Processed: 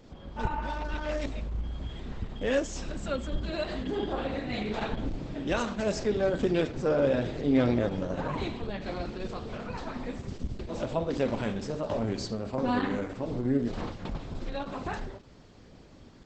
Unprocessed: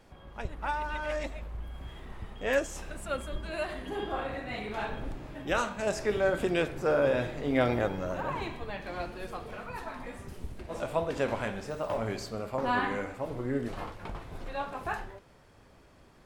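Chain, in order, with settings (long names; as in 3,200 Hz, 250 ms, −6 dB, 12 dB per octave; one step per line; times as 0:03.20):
octave-band graphic EQ 250/500/4,000/8,000 Hz +7/+4/+5/−7 dB
in parallel at −3 dB: downward compressor 10 to 1, threshold −31 dBFS, peak gain reduction 15.5 dB
on the sum: bass and treble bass +7 dB, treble +9 dB
healed spectral selection 0:00.40–0:00.72, 610–3,200 Hz after
gain into a clipping stage and back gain 9 dB
level −5.5 dB
Opus 10 kbit/s 48,000 Hz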